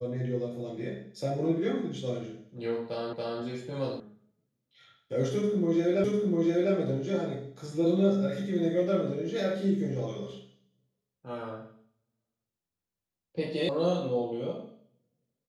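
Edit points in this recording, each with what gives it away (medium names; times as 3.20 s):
3.13 s: repeat of the last 0.28 s
4.00 s: sound stops dead
6.04 s: repeat of the last 0.7 s
13.69 s: sound stops dead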